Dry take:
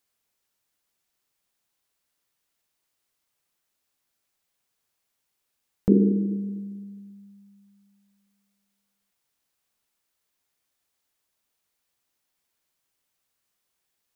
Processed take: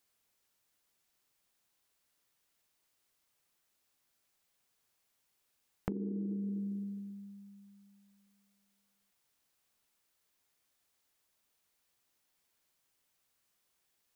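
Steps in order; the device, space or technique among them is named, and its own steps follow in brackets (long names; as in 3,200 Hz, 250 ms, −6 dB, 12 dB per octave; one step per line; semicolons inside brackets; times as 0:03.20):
serial compression, leveller first (downward compressor 2.5 to 1, threshold −23 dBFS, peak gain reduction 8 dB; downward compressor 10 to 1, threshold −34 dBFS, peak gain reduction 16 dB)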